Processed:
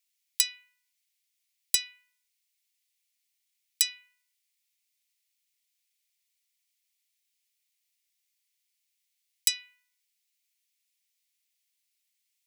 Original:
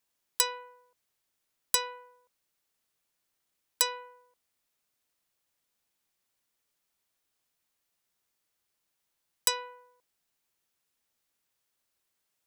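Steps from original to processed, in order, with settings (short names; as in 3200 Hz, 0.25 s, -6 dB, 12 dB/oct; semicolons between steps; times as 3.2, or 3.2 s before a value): elliptic high-pass 2100 Hz, stop band 80 dB; gain +2.5 dB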